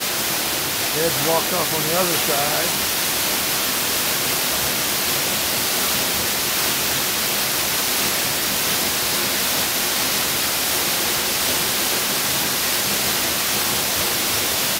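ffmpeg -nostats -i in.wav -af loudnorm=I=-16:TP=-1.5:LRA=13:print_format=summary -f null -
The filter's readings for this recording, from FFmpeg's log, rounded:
Input Integrated:    -18.1 LUFS
Input True Peak:      -5.5 dBTP
Input LRA:             0.2 LU
Input Threshold:     -28.1 LUFS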